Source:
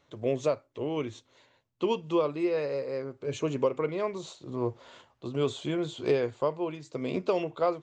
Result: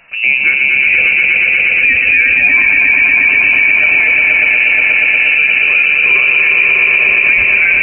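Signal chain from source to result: inverted band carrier 2800 Hz; harmonic-percussive split harmonic +8 dB; on a send: swelling echo 0.119 s, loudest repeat 5, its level -5.5 dB; on the sum: maximiser +18 dB; gain -1 dB

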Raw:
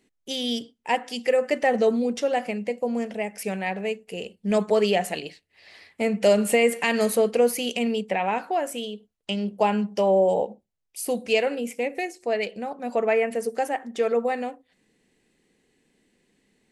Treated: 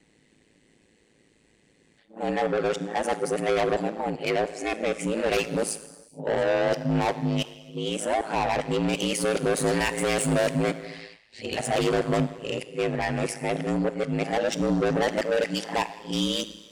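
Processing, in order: whole clip reversed; downsampling 22050 Hz; soft clip -26 dBFS, distortion -7 dB; non-linear reverb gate 0.47 s falling, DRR 11 dB; ring modulator 54 Hz; gain +7.5 dB

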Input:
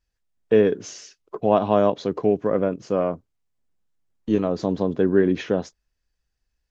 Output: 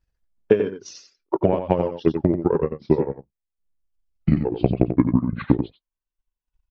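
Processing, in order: gliding pitch shift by -10 st starting unshifted; reverb removal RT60 1.4 s; compressor 6:1, threshold -24 dBFS, peak gain reduction 11 dB; transient shaper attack +10 dB, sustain -5 dB; echo 90 ms -8 dB; mismatched tape noise reduction decoder only; gain +3 dB

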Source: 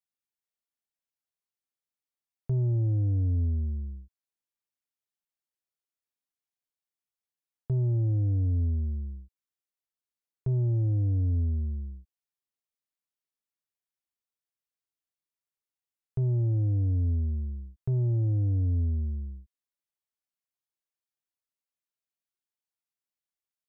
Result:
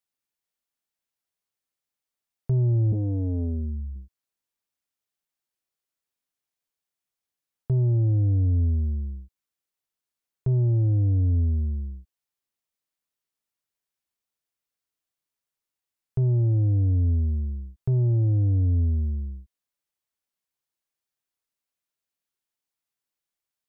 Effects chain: 2.92–3.96 core saturation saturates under 180 Hz; gain +4.5 dB

